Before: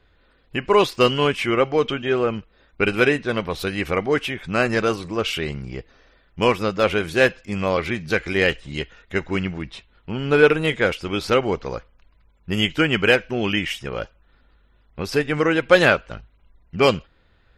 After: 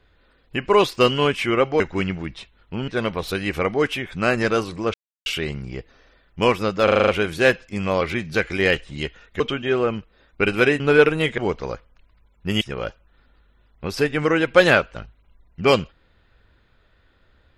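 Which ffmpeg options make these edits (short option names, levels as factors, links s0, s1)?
-filter_complex "[0:a]asplit=14[s0][s1][s2][s3][s4][s5][s6][s7][s8][s9][s10][s11][s12][s13];[s0]atrim=end=1.802[s14];[s1]atrim=start=9.158:end=10.242[s15];[s2]atrim=start=3.198:end=5.26,asetpts=PTS-STARTPTS,afade=t=out:st=2.058:d=0.004:c=hsin,apad=pad_dur=0.32[s16];[s3]atrim=start=5.26:end=6.882,asetpts=PTS-STARTPTS,afade=t=in:d=0.004:c=hsin[s17];[s4]atrim=start=6.838:end=6.882[s18];[s5]atrim=start=6.838:end=6.882[s19];[s6]atrim=start=6.838:end=6.882[s20];[s7]atrim=start=6.838:end=6.882[s21];[s8]atrim=start=6.838:end=6.882[s22];[s9]atrim=start=6.838:end=9.162[s23];[s10]atrim=start=1.798:end=3.202[s24];[s11]atrim=start=10.238:end=10.822[s25];[s12]atrim=start=11.408:end=12.642[s26];[s13]atrim=start=13.758[s27];[s14][s15]acrossfade=d=0.004:c1=hsin:c2=hsin[s28];[s16][s17]concat=n=2:v=0:a=1[s29];[s28][s29]acrossfade=d=0.004:c1=hsin:c2=hsin[s30];[s30][s18]acrossfade=d=0.004:c1=hsin:c2=hsin[s31];[s31][s19]acrossfade=d=0.004:c1=hsin:c2=hsin[s32];[s32][s20]acrossfade=d=0.004:c1=hsin:c2=hsin[s33];[s33][s21]acrossfade=d=0.004:c1=hsin:c2=hsin[s34];[s34][s22]acrossfade=d=0.004:c1=hsin:c2=hsin[s35];[s35][s23]acrossfade=d=0.004:c1=hsin:c2=hsin[s36];[s36][s24]acrossfade=d=0.004:c1=hsin:c2=hsin[s37];[s37][s25]acrossfade=d=0.004:c1=hsin:c2=hsin[s38];[s38][s26]acrossfade=d=0.004:c1=hsin:c2=hsin[s39];[s39][s27]acrossfade=d=0.004:c1=hsin:c2=hsin"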